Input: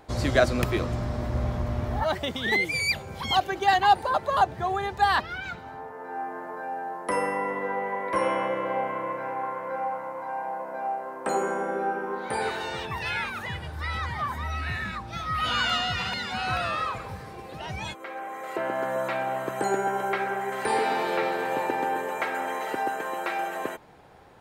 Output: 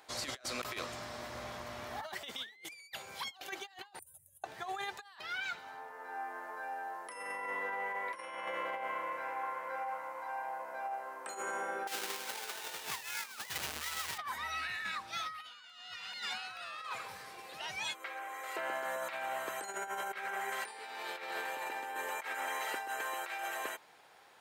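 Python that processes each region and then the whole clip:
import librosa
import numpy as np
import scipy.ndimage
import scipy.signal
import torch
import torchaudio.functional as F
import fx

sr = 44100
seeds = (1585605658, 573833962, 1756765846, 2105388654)

y = fx.chain(x, sr, fx.ellip_bandstop(low_hz=110.0, high_hz=9800.0, order=3, stop_db=40),
    fx.over_compress(threshold_db=-50.0, ratio=-1.0), at=(3.99, 4.44))
y = fx.chain(y, sr, fx.halfwave_hold(),
    fx.over_compress(threshold_db=-29.0, ratio=-0.5), at=(11.87, 14.18))
y = fx.lowpass(y, sr, hz=2500.0, slope=6)
y = np.diff(y, prepend=0.0)
y = fx.over_compress(y, sr, threshold_db=-48.0, ratio=-0.5)
y = y * librosa.db_to_amplitude(8.0)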